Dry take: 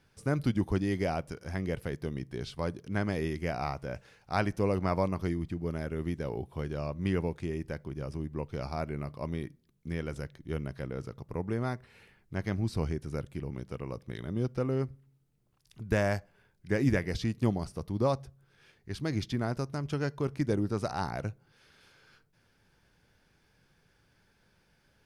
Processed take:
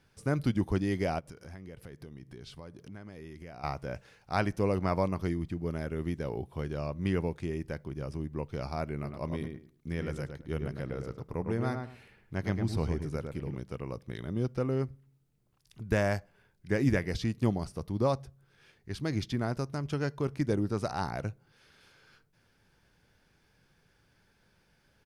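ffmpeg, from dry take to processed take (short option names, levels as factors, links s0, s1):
-filter_complex "[0:a]asettb=1/sr,asplit=3[s0][s1][s2];[s0]atrim=end=1.194[s3];[s1]atrim=start=1.19:end=3.64,asetpts=PTS-STARTPTS,afade=t=in:d=0.004:c=qsin,afade=t=out:st=2.446:d=0.004:c=qsin,acompressor=threshold=0.00708:ratio=5:attack=3.2:release=140:knee=1:detection=peak[s4];[s2]atrim=start=3.636[s5];[s3][s4]acrossfade=d=0.004:c1=hsin:c2=qsin[s6];[s6][s5]acrossfade=d=0.004:c1=qsin:c2=hsin,asplit=3[s7][s8][s9];[s7]afade=t=out:st=9.03:d=0.02[s10];[s8]asplit=2[s11][s12];[s12]adelay=106,lowpass=f=2100:p=1,volume=0.562,asplit=2[s13][s14];[s14]adelay=106,lowpass=f=2100:p=1,volume=0.21,asplit=2[s15][s16];[s16]adelay=106,lowpass=f=2100:p=1,volume=0.21[s17];[s11][s13][s15][s17]amix=inputs=4:normalize=0,afade=t=in:st=9.03:d=0.02,afade=t=out:st=13.54:d=0.02[s18];[s9]afade=t=in:st=13.54:d=0.02[s19];[s10][s18][s19]amix=inputs=3:normalize=0"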